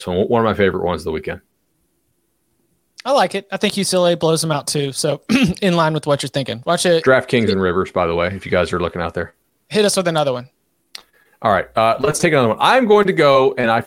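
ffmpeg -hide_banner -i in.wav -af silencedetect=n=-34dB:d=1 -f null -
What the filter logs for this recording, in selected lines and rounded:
silence_start: 1.38
silence_end: 2.98 | silence_duration: 1.61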